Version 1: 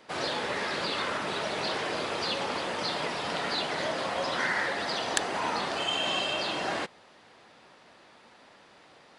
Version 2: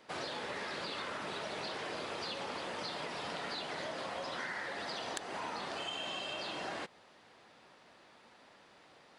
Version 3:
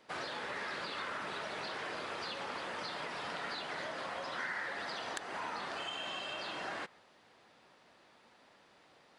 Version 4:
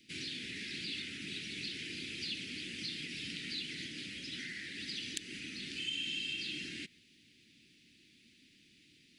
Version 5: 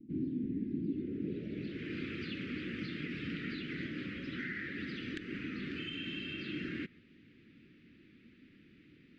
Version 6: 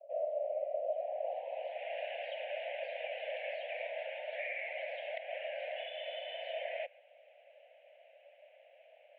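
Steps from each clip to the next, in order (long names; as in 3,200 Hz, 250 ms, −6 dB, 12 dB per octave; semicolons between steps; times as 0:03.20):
downward compressor, threshold −32 dBFS, peak gain reduction 11 dB; level −5 dB
dynamic equaliser 1,500 Hz, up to +6 dB, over −55 dBFS, Q 0.97; level −3 dB
Chebyshev band-stop filter 300–2,400 Hz, order 3; level +5.5 dB
low-pass filter sweep 280 Hz → 1,200 Hz, 0:00.83–0:01.98; level +8.5 dB
single-sideband voice off tune +340 Hz 190–2,600 Hz; level +1 dB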